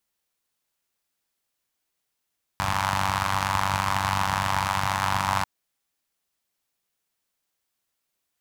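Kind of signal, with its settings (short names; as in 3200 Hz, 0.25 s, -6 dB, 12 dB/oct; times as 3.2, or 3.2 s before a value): four-cylinder engine model, steady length 2.84 s, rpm 2900, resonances 83/120/940 Hz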